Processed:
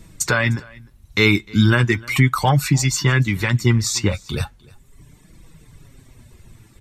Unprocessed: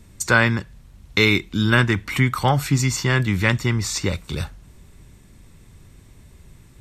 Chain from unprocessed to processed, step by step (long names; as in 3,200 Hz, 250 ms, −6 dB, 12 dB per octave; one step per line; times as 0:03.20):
reverb reduction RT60 1.2 s
brickwall limiter −11 dBFS, peak gain reduction 8.5 dB
flanger 0.37 Hz, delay 6 ms, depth 3.5 ms, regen +37%
single-tap delay 303 ms −24 dB
level +8.5 dB